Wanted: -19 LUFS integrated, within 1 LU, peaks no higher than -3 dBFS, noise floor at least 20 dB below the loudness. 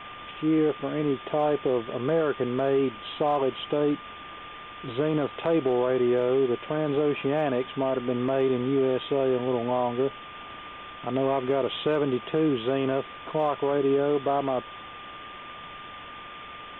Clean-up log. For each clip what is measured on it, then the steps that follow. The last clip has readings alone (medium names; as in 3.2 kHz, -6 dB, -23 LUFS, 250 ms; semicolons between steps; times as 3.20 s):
steady tone 1.2 kHz; tone level -42 dBFS; noise floor -42 dBFS; noise floor target -47 dBFS; loudness -26.5 LUFS; peak level -14.5 dBFS; loudness target -19.0 LUFS
-> band-stop 1.2 kHz, Q 30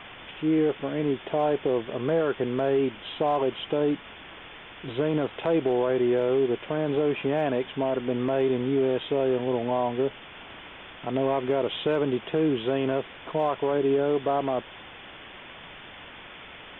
steady tone not found; noise floor -45 dBFS; noise floor target -47 dBFS
-> noise print and reduce 6 dB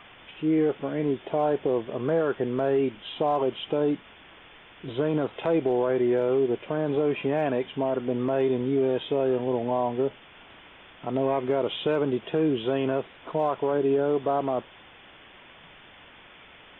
noise floor -51 dBFS; loudness -26.5 LUFS; peak level -15.0 dBFS; loudness target -19.0 LUFS
-> trim +7.5 dB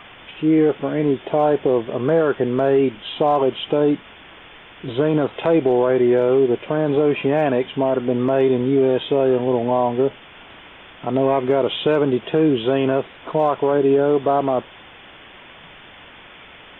loudness -19.0 LUFS; peak level -7.5 dBFS; noise floor -43 dBFS